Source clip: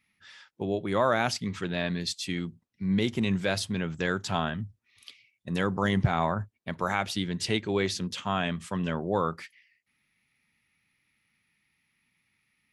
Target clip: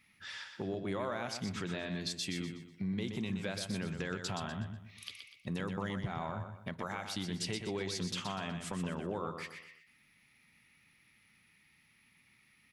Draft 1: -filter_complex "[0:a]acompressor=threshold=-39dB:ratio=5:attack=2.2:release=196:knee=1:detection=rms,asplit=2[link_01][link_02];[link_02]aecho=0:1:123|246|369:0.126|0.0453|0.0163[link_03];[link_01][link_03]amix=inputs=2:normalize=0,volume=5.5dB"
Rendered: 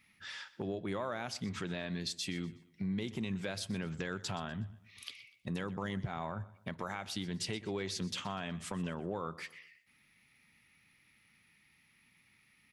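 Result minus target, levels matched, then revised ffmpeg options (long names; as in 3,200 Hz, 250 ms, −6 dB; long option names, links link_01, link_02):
echo-to-direct −11 dB
-filter_complex "[0:a]acompressor=threshold=-39dB:ratio=5:attack=2.2:release=196:knee=1:detection=rms,asplit=2[link_01][link_02];[link_02]aecho=0:1:123|246|369|492:0.447|0.161|0.0579|0.0208[link_03];[link_01][link_03]amix=inputs=2:normalize=0,volume=5.5dB"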